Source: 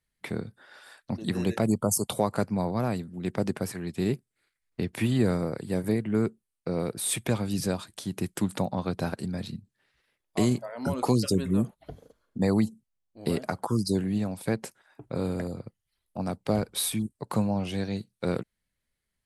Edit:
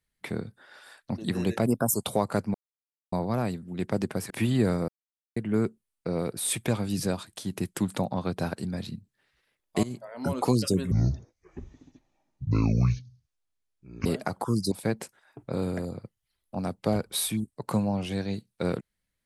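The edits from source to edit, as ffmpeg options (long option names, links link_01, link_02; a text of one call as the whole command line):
ffmpeg -i in.wav -filter_complex "[0:a]asplit=11[link_01][link_02][link_03][link_04][link_05][link_06][link_07][link_08][link_09][link_10][link_11];[link_01]atrim=end=1.664[link_12];[link_02]atrim=start=1.66:end=1.98,asetpts=PTS-STARTPTS,asetrate=49833,aresample=44100,atrim=end_sample=12488,asetpts=PTS-STARTPTS[link_13];[link_03]atrim=start=1.976:end=2.58,asetpts=PTS-STARTPTS,afade=type=out:start_time=0.6:duration=0.004:curve=hsin,apad=pad_dur=0.58[link_14];[link_04]atrim=start=2.58:end=3.762,asetpts=PTS-STARTPTS,afade=type=in:duration=0.004:curve=hsin[link_15];[link_05]atrim=start=4.908:end=5.49,asetpts=PTS-STARTPTS,afade=type=out:start_time=0.578:duration=0.004:curve=hsin[link_16];[link_06]atrim=start=5.49:end=5.97,asetpts=PTS-STARTPTS,volume=0[link_17];[link_07]atrim=start=5.97:end=10.44,asetpts=PTS-STARTPTS,afade=type=in:duration=0.004:curve=hsin,afade=type=out:start_time=4.466:duration=0.004:curve=hsin:silence=0.11885[link_18];[link_08]atrim=start=10.44:end=11.524,asetpts=PTS-STARTPTS,afade=type=in:duration=0.44:silence=0.11885[link_19];[link_09]atrim=start=11.52:end=13.28,asetpts=PTS-STARTPTS,asetrate=24696,aresample=44100[link_20];[link_10]atrim=start=13.276:end=13.942[link_21];[link_11]atrim=start=14.338[link_22];[link_12][link_13]acrossfade=duration=0.004:curve1=hsin:curve2=hsin[link_23];[link_14][link_15]concat=n=2:v=0:a=1[link_24];[link_23][link_24]acrossfade=duration=0.004:curve1=hsin:curve2=hsin[link_25];[link_16][link_17][link_18][link_19]concat=n=4:v=0:a=1[link_26];[link_25][link_26]acrossfade=duration=0.004:curve1=hsin:curve2=hsin[link_27];[link_27][link_20]acrossfade=duration=0.004:curve1=hsin:curve2=hsin[link_28];[link_28][link_21]acrossfade=duration=0.004:curve1=hsin:curve2=hsin[link_29];[link_29][link_22]acrossfade=duration=0.004:curve1=hsin:curve2=hsin" out.wav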